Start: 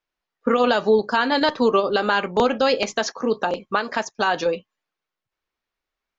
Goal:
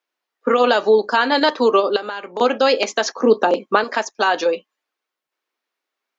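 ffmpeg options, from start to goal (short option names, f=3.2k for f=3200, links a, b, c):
-filter_complex "[0:a]highpass=f=260:w=0.5412,highpass=f=260:w=1.3066,asettb=1/sr,asplit=3[a][b][c];[a]atrim=end=1.964[d];[b]atrim=start=1.96:end=2.41,asetpts=PTS-STARTPTS,afade=t=in:d=0.004:c=qsin,afade=t=out:st=0.446:d=0.004:c=qsin,acompressor=threshold=-28dB:ratio=8[e];[c]atrim=start=2.406[f];[d][e]acrossfade=d=0.004:c1=hsin:c2=qsin[g];[g][f]acrossfade=d=0.004:c1=qsin:c2=hsin,asettb=1/sr,asplit=3[h][i][j];[h]atrim=end=3.184[k];[i]atrim=start=3.18:end=3.84,asetpts=PTS-STARTPTS,afade=t=in:d=0.004:c=qsin,afade=t=out:st=0.656:d=0.004:c=qsin,lowshelf=f=490:g=9.5[l];[j]atrim=start=3.836[m];[k][l]acrossfade=d=0.004:c1=hsin:c2=qsin[n];[n][m]acrossfade=d=0.004:c1=qsin:c2=hsin,volume=3.5dB"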